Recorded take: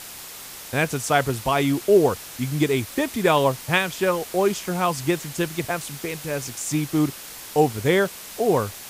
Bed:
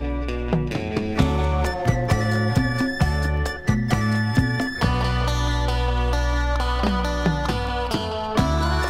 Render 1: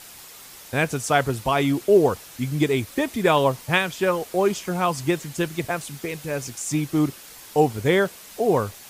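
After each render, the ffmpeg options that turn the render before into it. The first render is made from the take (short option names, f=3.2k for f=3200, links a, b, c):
-af "afftdn=nr=6:nf=-39"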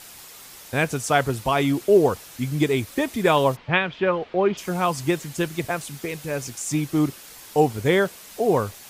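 -filter_complex "[0:a]asplit=3[a][b][c];[a]afade=t=out:st=3.55:d=0.02[d];[b]lowpass=f=3.4k:w=0.5412,lowpass=f=3.4k:w=1.3066,afade=t=in:st=3.55:d=0.02,afade=t=out:st=4.57:d=0.02[e];[c]afade=t=in:st=4.57:d=0.02[f];[d][e][f]amix=inputs=3:normalize=0"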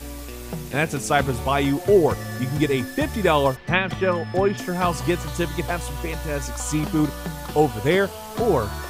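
-filter_complex "[1:a]volume=-10dB[a];[0:a][a]amix=inputs=2:normalize=0"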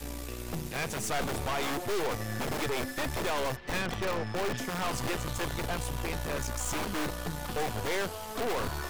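-filter_complex "[0:a]acrossover=split=350|980|6700[a][b][c][d];[a]aeval=exprs='(mod(15*val(0)+1,2)-1)/15':c=same[e];[e][b][c][d]amix=inputs=4:normalize=0,aeval=exprs='(tanh(28.2*val(0)+0.75)-tanh(0.75))/28.2':c=same"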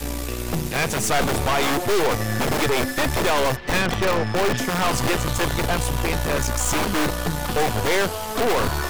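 -af "volume=11dB"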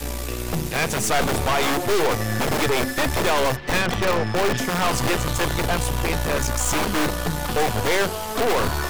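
-af "bandreject=f=47.7:t=h:w=4,bandreject=f=95.4:t=h:w=4,bandreject=f=143.1:t=h:w=4,bandreject=f=190.8:t=h:w=4,bandreject=f=238.5:t=h:w=4,bandreject=f=286.2:t=h:w=4,bandreject=f=333.9:t=h:w=4,bandreject=f=381.6:t=h:w=4"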